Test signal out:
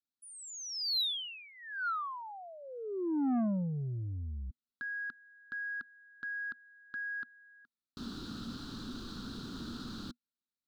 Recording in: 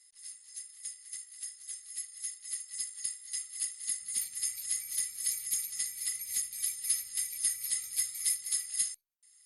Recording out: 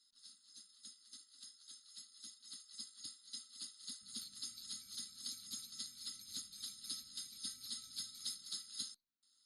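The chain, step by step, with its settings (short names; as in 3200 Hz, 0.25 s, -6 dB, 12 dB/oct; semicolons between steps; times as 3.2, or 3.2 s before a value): EQ curve 160 Hz 0 dB, 240 Hz +9 dB, 600 Hz -21 dB, 960 Hz -15 dB, 1400 Hz -3 dB, 2100 Hz -29 dB, 4000 Hz 0 dB, 5600 Hz -13 dB, 11000 Hz -26 dB; soft clip -29.5 dBFS; low shelf 140 Hz -11.5 dB; gain +4.5 dB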